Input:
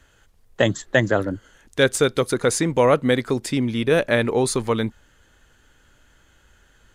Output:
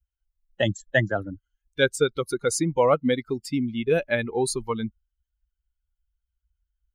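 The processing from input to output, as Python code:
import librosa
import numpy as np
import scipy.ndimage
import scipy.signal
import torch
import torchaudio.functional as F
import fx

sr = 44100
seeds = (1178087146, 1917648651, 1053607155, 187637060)

y = fx.bin_expand(x, sr, power=2.0)
y = fx.high_shelf(y, sr, hz=7400.0, db=-9.0, at=(1.81, 2.22))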